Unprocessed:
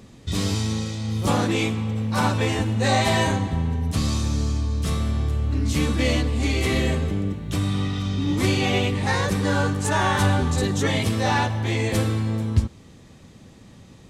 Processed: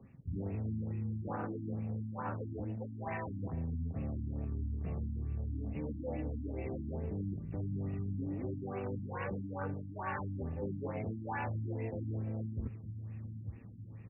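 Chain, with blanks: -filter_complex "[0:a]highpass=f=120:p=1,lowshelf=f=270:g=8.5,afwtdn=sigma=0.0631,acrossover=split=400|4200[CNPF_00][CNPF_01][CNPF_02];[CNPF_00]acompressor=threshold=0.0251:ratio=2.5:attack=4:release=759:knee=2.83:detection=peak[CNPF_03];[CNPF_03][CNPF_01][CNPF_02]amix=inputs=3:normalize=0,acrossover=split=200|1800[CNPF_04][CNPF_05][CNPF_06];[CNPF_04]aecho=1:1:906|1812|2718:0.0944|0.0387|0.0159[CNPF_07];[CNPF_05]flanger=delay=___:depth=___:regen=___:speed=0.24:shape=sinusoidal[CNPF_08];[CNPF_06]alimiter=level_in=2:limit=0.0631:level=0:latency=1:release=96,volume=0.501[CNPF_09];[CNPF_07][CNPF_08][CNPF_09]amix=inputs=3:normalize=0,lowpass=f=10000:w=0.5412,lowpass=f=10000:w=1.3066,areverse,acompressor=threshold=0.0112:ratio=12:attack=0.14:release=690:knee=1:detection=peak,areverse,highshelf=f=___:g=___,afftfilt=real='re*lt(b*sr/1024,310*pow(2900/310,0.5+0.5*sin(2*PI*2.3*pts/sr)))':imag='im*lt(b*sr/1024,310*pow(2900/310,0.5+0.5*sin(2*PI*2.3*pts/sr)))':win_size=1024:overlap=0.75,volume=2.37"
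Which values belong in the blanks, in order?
7.5, 2.3, 62, 2900, 11.5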